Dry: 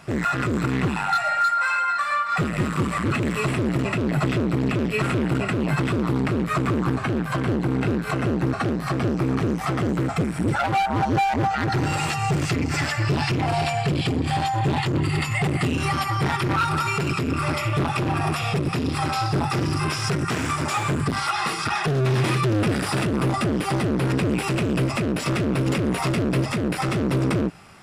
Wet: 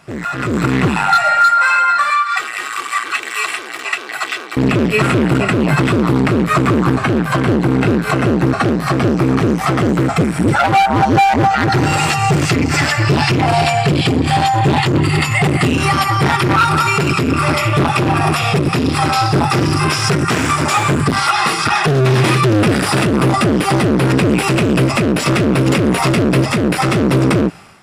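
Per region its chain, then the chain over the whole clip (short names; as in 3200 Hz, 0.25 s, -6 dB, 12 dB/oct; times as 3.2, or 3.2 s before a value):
2.1–4.57 HPF 1300 Hz + comb 2.6 ms, depth 50%
whole clip: low shelf 110 Hz -5 dB; AGC gain up to 11 dB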